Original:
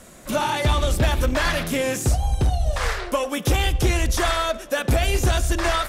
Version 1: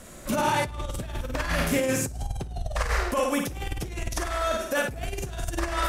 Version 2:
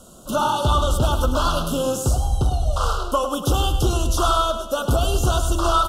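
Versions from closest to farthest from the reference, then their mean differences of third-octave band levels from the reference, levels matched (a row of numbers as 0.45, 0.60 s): 2, 1; 4.0, 6.0 dB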